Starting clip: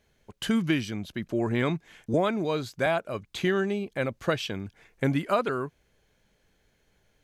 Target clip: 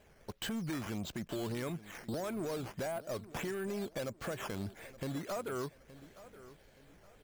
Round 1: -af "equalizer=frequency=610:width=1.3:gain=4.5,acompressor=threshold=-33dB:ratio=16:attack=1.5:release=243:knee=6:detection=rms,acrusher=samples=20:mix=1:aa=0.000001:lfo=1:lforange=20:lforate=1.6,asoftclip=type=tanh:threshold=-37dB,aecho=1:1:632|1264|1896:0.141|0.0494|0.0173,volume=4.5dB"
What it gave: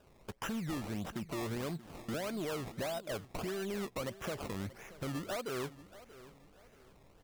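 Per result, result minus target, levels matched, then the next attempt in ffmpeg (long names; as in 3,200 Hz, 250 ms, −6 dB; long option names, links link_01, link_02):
echo 239 ms early; sample-and-hold swept by an LFO: distortion +6 dB
-af "equalizer=frequency=610:width=1.3:gain=4.5,acompressor=threshold=-33dB:ratio=16:attack=1.5:release=243:knee=6:detection=rms,acrusher=samples=20:mix=1:aa=0.000001:lfo=1:lforange=20:lforate=1.6,asoftclip=type=tanh:threshold=-37dB,aecho=1:1:871|1742|2613:0.141|0.0494|0.0173,volume=4.5dB"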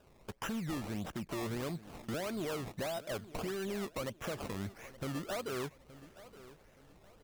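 sample-and-hold swept by an LFO: distortion +6 dB
-af "equalizer=frequency=610:width=1.3:gain=4.5,acompressor=threshold=-33dB:ratio=16:attack=1.5:release=243:knee=6:detection=rms,acrusher=samples=8:mix=1:aa=0.000001:lfo=1:lforange=8:lforate=1.6,asoftclip=type=tanh:threshold=-37dB,aecho=1:1:871|1742|2613:0.141|0.0494|0.0173,volume=4.5dB"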